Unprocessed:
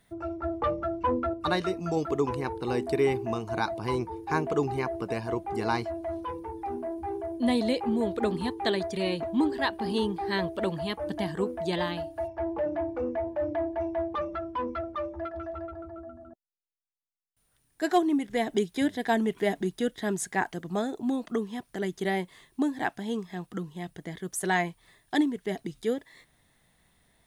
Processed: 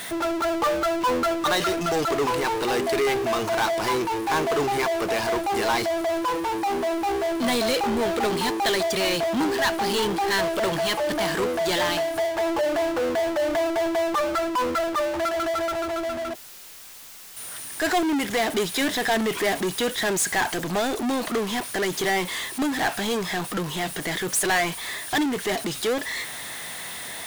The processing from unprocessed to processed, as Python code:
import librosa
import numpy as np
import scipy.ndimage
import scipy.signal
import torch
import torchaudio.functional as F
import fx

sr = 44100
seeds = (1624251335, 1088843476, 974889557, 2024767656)

y = fx.highpass(x, sr, hz=960.0, slope=6)
y = fx.power_curve(y, sr, exponent=0.35)